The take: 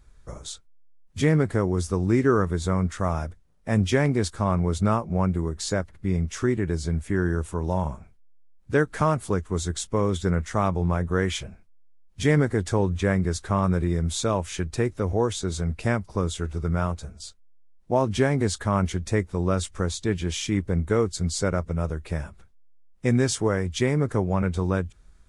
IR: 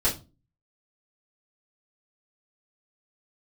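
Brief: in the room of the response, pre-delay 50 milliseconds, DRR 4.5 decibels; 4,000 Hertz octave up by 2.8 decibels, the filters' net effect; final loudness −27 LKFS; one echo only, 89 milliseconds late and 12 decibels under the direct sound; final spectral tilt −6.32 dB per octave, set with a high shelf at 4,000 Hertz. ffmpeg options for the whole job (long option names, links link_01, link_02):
-filter_complex "[0:a]highshelf=frequency=4000:gain=-3.5,equalizer=frequency=4000:width_type=o:gain=5.5,aecho=1:1:89:0.251,asplit=2[link_01][link_02];[1:a]atrim=start_sample=2205,adelay=50[link_03];[link_02][link_03]afir=irnorm=-1:irlink=0,volume=-15.5dB[link_04];[link_01][link_04]amix=inputs=2:normalize=0,volume=-4.5dB"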